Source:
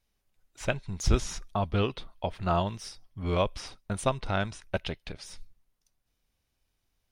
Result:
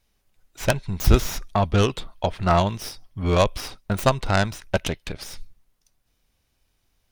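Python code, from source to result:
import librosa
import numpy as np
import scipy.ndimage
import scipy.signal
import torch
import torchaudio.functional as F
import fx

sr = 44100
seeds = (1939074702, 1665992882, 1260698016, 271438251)

y = fx.tracing_dist(x, sr, depth_ms=0.2)
y = y * 10.0 ** (8.0 / 20.0)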